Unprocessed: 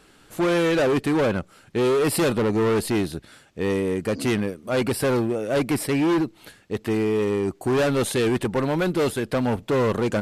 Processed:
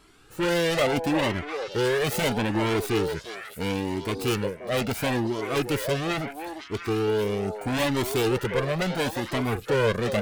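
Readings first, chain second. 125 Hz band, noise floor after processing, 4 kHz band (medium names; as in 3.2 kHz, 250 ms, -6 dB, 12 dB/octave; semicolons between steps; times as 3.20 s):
-2.0 dB, -46 dBFS, +2.0 dB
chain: self-modulated delay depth 0.24 ms; repeats whose band climbs or falls 352 ms, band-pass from 640 Hz, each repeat 1.4 oct, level -3 dB; Shepard-style flanger rising 0.75 Hz; trim +2 dB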